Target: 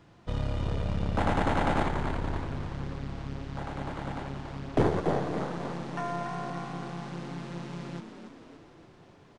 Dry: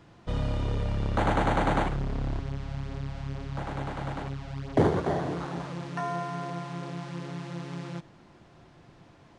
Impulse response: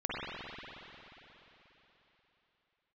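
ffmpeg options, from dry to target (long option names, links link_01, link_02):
-filter_complex "[0:a]asplit=8[link_01][link_02][link_03][link_04][link_05][link_06][link_07][link_08];[link_02]adelay=284,afreqshift=52,volume=-8dB[link_09];[link_03]adelay=568,afreqshift=104,volume=-13.2dB[link_10];[link_04]adelay=852,afreqshift=156,volume=-18.4dB[link_11];[link_05]adelay=1136,afreqshift=208,volume=-23.6dB[link_12];[link_06]adelay=1420,afreqshift=260,volume=-28.8dB[link_13];[link_07]adelay=1704,afreqshift=312,volume=-34dB[link_14];[link_08]adelay=1988,afreqshift=364,volume=-39.2dB[link_15];[link_01][link_09][link_10][link_11][link_12][link_13][link_14][link_15]amix=inputs=8:normalize=0,aeval=exprs='0.282*(cos(1*acos(clip(val(0)/0.282,-1,1)))-cos(1*PI/2))+0.0398*(cos(4*acos(clip(val(0)/0.282,-1,1)))-cos(4*PI/2))':channel_layout=same,asplit=2[link_16][link_17];[1:a]atrim=start_sample=2205,adelay=11[link_18];[link_17][link_18]afir=irnorm=-1:irlink=0,volume=-27.5dB[link_19];[link_16][link_19]amix=inputs=2:normalize=0,volume=-2.5dB"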